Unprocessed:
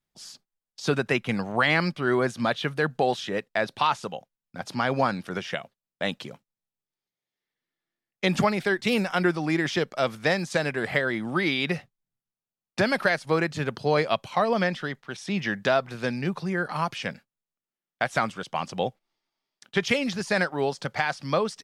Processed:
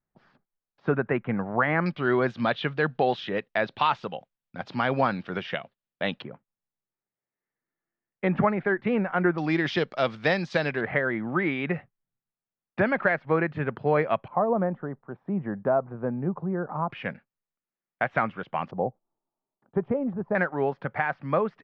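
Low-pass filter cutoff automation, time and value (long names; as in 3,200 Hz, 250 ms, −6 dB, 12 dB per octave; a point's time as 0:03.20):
low-pass filter 24 dB per octave
1,800 Hz
from 0:01.86 3,700 Hz
from 0:06.22 1,900 Hz
from 0:09.38 4,400 Hz
from 0:10.81 2,200 Hz
from 0:14.28 1,100 Hz
from 0:16.90 2,400 Hz
from 0:18.71 1,000 Hz
from 0:20.35 2,100 Hz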